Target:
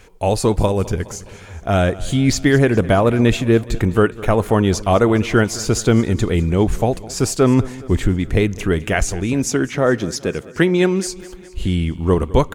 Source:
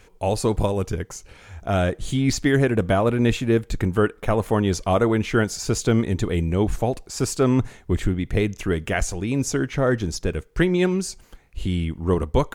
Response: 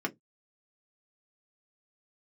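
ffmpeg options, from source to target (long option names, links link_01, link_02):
-filter_complex "[0:a]asettb=1/sr,asplit=3[link_01][link_02][link_03];[link_01]atrim=end=9.334[link_04];[link_02]atrim=start=9.33:end=11.06,asetpts=PTS-STARTPTS,afade=type=in:duration=0.004:curve=qsin,afade=type=out:start_time=1.726:duration=0.004:curve=qsin,highpass=150[link_05];[link_03]atrim=start=11.056[link_06];[link_04][link_05]acrossfade=duration=0.004:curve1=hsin:curve2=qsin[link_07];[link_07][link_06]acrossfade=duration=0.004:curve1=qsin:curve2=hsin,aecho=1:1:208|416|624|832|1040:0.106|0.0636|0.0381|0.0229|0.0137,volume=5dB"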